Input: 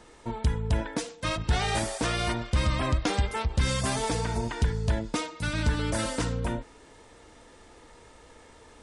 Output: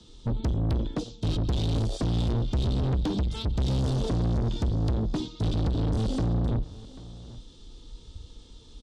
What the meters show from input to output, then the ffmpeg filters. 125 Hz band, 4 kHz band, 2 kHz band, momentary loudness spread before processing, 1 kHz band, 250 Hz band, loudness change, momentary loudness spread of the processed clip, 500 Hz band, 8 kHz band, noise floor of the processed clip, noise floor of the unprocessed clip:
+3.5 dB, -4.5 dB, -15.5 dB, 5 LU, -8.5 dB, +3.0 dB, +1.0 dB, 18 LU, -2.0 dB, -12.5 dB, -50 dBFS, -53 dBFS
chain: -filter_complex "[0:a]aemphasis=mode=reproduction:type=bsi,afwtdn=0.0794,firequalizer=gain_entry='entry(140,0);entry(630,-23);entry(1300,-22);entry(1900,-30);entry(3400,1);entry(9100,-6)':delay=0.05:min_phase=1,acrossover=split=110|370[s0][s1][s2];[s0]acompressor=threshold=0.112:ratio=4[s3];[s1]acompressor=threshold=0.0178:ratio=4[s4];[s2]acompressor=threshold=0.00251:ratio=4[s5];[s3][s4][s5]amix=inputs=3:normalize=0,asplit=2[s6][s7];[s7]highpass=f=720:p=1,volume=112,asoftclip=type=tanh:threshold=0.251[s8];[s6][s8]amix=inputs=2:normalize=0,lowpass=f=7400:p=1,volume=0.501,asplit=2[s9][s10];[s10]aecho=0:1:789:0.119[s11];[s9][s11]amix=inputs=2:normalize=0,volume=0.473"

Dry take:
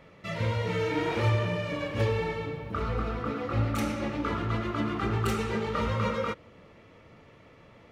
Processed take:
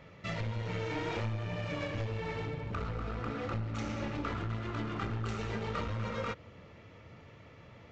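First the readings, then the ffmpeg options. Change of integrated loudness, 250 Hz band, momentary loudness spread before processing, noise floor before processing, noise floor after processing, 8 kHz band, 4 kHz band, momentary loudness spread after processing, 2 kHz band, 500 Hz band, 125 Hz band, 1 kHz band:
-7.0 dB, -7.5 dB, 5 LU, -55 dBFS, -55 dBFS, -8.0 dB, -6.0 dB, 18 LU, -6.0 dB, -8.5 dB, -6.0 dB, -7.5 dB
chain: -af "equalizer=f=93:t=o:w=2:g=11,acompressor=threshold=0.0447:ratio=4,aresample=16000,aeval=exprs='clip(val(0),-1,0.0266)':c=same,aresample=44100,lowshelf=f=440:g=-6.5,bandreject=f=1100:w=30"

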